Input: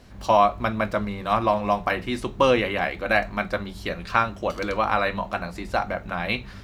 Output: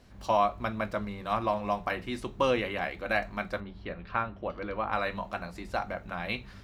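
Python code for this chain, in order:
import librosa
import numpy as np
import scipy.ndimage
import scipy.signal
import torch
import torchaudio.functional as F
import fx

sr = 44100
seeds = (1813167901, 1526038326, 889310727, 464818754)

y = fx.air_absorb(x, sr, metres=340.0, at=(3.6, 4.93))
y = y * 10.0 ** (-7.5 / 20.0)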